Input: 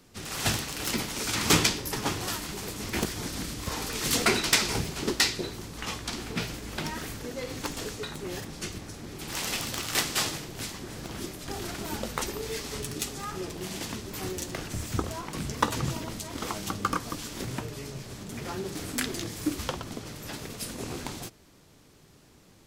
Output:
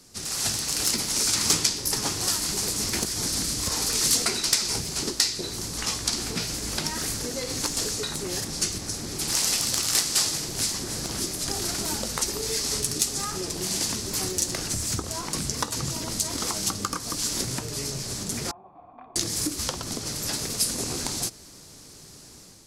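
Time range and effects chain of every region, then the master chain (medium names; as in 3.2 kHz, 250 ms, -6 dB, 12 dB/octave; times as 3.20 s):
18.51–19.16 s: cascade formant filter a + band-stop 410 Hz, Q 5.7
whole clip: compression 3:1, threshold -36 dBFS; high-order bell 7 kHz +11 dB; level rider gain up to 6 dB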